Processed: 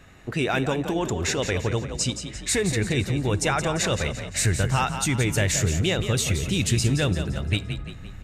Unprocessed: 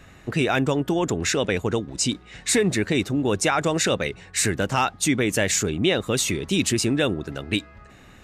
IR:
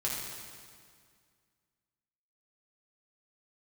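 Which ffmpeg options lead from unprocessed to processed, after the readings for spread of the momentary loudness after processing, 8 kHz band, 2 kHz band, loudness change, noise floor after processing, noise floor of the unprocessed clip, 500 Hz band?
5 LU, -1.5 dB, -2.0 dB, -1.5 dB, -39 dBFS, -48 dBFS, -3.5 dB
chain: -filter_complex "[0:a]asubboost=boost=9:cutoff=90,asplit=6[s0][s1][s2][s3][s4][s5];[s1]adelay=172,afreqshift=31,volume=0.355[s6];[s2]adelay=344,afreqshift=62,volume=0.164[s7];[s3]adelay=516,afreqshift=93,volume=0.075[s8];[s4]adelay=688,afreqshift=124,volume=0.0347[s9];[s5]adelay=860,afreqshift=155,volume=0.0158[s10];[s0][s6][s7][s8][s9][s10]amix=inputs=6:normalize=0,asplit=2[s11][s12];[1:a]atrim=start_sample=2205,afade=t=out:st=0.15:d=0.01,atrim=end_sample=7056[s13];[s12][s13]afir=irnorm=-1:irlink=0,volume=0.0841[s14];[s11][s14]amix=inputs=2:normalize=0,volume=0.708"

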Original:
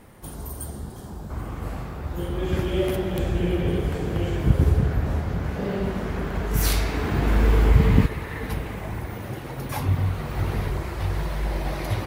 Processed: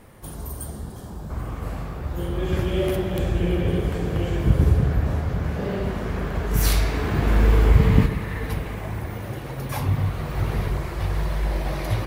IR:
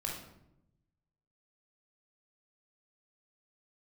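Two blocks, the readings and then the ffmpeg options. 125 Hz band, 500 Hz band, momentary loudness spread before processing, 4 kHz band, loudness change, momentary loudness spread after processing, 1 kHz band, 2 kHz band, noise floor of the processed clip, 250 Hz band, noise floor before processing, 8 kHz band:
+1.5 dB, +0.5 dB, 14 LU, +0.5 dB, +1.5 dB, 14 LU, +0.5 dB, +0.5 dB, -36 dBFS, +0.5 dB, -37 dBFS, +0.5 dB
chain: -filter_complex "[0:a]asplit=2[s0][s1];[1:a]atrim=start_sample=2205[s2];[s1][s2]afir=irnorm=-1:irlink=0,volume=0.266[s3];[s0][s3]amix=inputs=2:normalize=0,volume=0.891"

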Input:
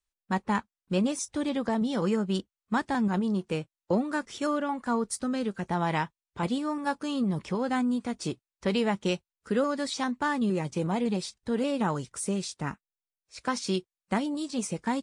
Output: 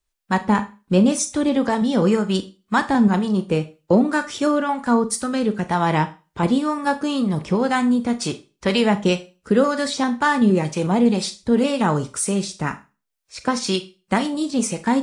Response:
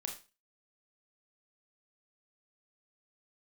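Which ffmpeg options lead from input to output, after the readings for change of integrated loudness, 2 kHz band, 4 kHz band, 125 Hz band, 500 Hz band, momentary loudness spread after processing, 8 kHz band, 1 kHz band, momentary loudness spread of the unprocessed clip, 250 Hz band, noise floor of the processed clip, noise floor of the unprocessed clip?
+9.5 dB, +9.5 dB, +9.0 dB, +9.0 dB, +9.5 dB, 7 LU, +10.0 dB, +9.0 dB, 6 LU, +9.5 dB, -74 dBFS, under -85 dBFS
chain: -filter_complex "[0:a]acrossover=split=740[s0][s1];[s0]aeval=exprs='val(0)*(1-0.5/2+0.5/2*cos(2*PI*2*n/s))':c=same[s2];[s1]aeval=exprs='val(0)*(1-0.5/2-0.5/2*cos(2*PI*2*n/s))':c=same[s3];[s2][s3]amix=inputs=2:normalize=0,asplit=2[s4][s5];[1:a]atrim=start_sample=2205[s6];[s5][s6]afir=irnorm=-1:irlink=0,volume=0.841[s7];[s4][s7]amix=inputs=2:normalize=0,volume=2.24"

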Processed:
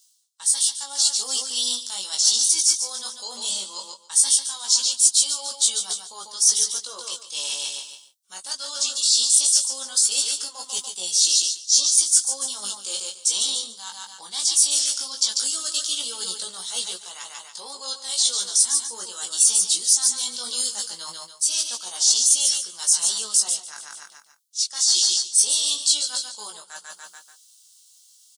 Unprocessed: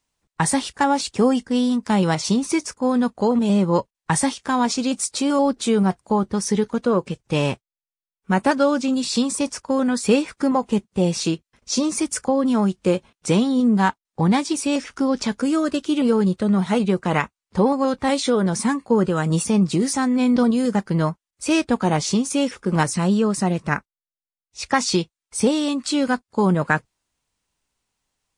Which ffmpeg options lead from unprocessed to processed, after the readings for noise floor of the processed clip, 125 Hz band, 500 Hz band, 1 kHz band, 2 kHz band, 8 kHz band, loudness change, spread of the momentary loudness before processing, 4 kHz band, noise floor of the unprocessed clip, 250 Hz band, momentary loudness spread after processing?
-54 dBFS, under -40 dB, -24.0 dB, -18.0 dB, -14.0 dB, +12.5 dB, +1.5 dB, 5 LU, +9.5 dB, under -85 dBFS, under -30 dB, 17 LU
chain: -af "highpass=1000,aecho=1:1:145|290|435|580:0.355|0.131|0.0486|0.018,areverse,acompressor=threshold=0.01:ratio=8,areverse,bandreject=f=2500:w=5,dynaudnorm=f=120:g=11:m=1.58,aexciter=amount=15:drive=5.8:freq=3100,flanger=delay=16.5:depth=5.4:speed=0.18,volume=0.891"

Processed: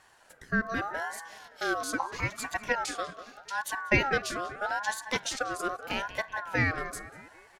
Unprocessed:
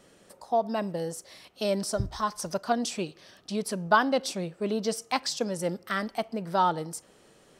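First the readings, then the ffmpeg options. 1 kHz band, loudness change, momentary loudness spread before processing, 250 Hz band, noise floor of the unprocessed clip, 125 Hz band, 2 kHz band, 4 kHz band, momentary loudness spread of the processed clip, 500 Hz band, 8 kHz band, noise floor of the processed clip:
-4.0 dB, -2.0 dB, 11 LU, -5.5 dB, -59 dBFS, -1.0 dB, +5.5 dB, -2.5 dB, 12 LU, -6.5 dB, -2.0 dB, -59 dBFS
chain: -filter_complex "[0:a]asplit=2[s0][s1];[s1]adelay=191,lowpass=f=2000:p=1,volume=0.251,asplit=2[s2][s3];[s3]adelay=191,lowpass=f=2000:p=1,volume=0.54,asplit=2[s4][s5];[s5]adelay=191,lowpass=f=2000:p=1,volume=0.54,asplit=2[s6][s7];[s7]adelay=191,lowpass=f=2000:p=1,volume=0.54,asplit=2[s8][s9];[s9]adelay=191,lowpass=f=2000:p=1,volume=0.54,asplit=2[s10][s11];[s11]adelay=191,lowpass=f=2000:p=1,volume=0.54[s12];[s0][s2][s4][s6][s8][s10][s12]amix=inputs=7:normalize=0,aeval=exprs='val(0)*sin(2*PI*1100*n/s+1100*0.2/0.8*sin(2*PI*0.8*n/s))':c=same"

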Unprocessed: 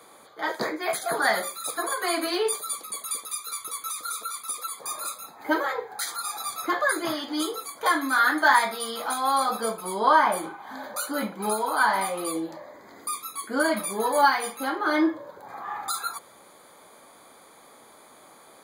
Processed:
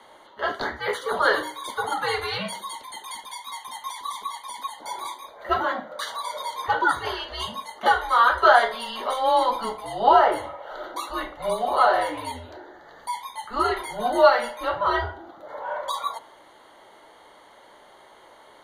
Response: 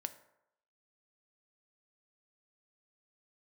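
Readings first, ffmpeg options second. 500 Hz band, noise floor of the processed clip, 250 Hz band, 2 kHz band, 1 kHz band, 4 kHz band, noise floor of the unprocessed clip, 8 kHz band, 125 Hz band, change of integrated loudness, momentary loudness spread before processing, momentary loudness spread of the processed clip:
+4.5 dB, -51 dBFS, -6.5 dB, -0.5 dB, +3.0 dB, +1.5 dB, -52 dBFS, -10.5 dB, no reading, +2.0 dB, 12 LU, 18 LU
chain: -filter_complex "[0:a]afreqshift=-240,acrossover=split=390 4500:gain=0.141 1 0.141[s0][s1][s2];[s0][s1][s2]amix=inputs=3:normalize=0,asplit=2[s3][s4];[1:a]atrim=start_sample=2205[s5];[s4][s5]afir=irnorm=-1:irlink=0,volume=1.12[s6];[s3][s6]amix=inputs=2:normalize=0,volume=0.841"

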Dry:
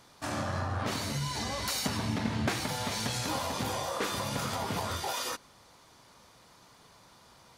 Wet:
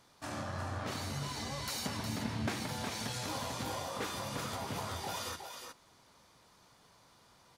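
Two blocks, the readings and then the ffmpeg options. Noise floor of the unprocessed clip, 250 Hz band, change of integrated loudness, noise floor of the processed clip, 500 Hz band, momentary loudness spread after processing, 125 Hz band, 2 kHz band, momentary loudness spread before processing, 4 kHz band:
-59 dBFS, -5.5 dB, -5.5 dB, -64 dBFS, -5.5 dB, 5 LU, -5.5 dB, -5.5 dB, 3 LU, -5.5 dB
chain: -af "aecho=1:1:363:0.473,volume=0.473"

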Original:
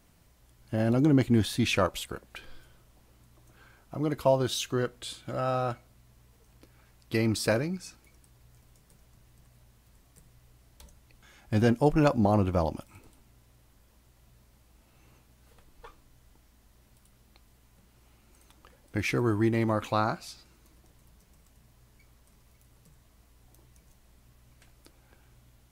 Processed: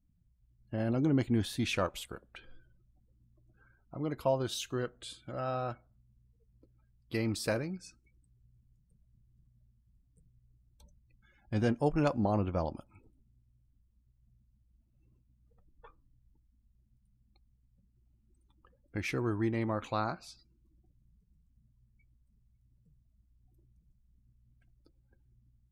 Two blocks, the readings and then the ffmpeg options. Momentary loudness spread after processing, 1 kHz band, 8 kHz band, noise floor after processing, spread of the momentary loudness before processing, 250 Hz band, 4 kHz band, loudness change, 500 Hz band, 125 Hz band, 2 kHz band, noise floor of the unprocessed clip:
16 LU, -6.0 dB, -6.5 dB, -71 dBFS, 16 LU, -6.0 dB, -6.0 dB, -6.0 dB, -6.0 dB, -6.0 dB, -6.0 dB, -62 dBFS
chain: -af "afftdn=nr=27:nf=-54,volume=0.501"

